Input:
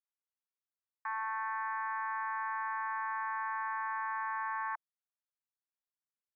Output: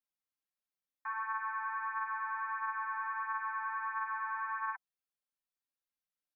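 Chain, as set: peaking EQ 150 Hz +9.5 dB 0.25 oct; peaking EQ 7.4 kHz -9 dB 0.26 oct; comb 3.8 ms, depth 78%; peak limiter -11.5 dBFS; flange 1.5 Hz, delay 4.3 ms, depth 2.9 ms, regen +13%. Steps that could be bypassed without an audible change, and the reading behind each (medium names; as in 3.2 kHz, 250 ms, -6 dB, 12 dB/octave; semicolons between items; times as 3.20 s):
peaking EQ 150 Hz: input has nothing below 640 Hz; peaking EQ 7.4 kHz: input has nothing above 2.6 kHz; peak limiter -11.5 dBFS: peak at its input -26.5 dBFS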